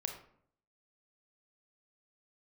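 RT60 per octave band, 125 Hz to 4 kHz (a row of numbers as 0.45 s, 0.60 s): 0.80 s, 0.75 s, 0.65 s, 0.60 s, 0.50 s, 0.35 s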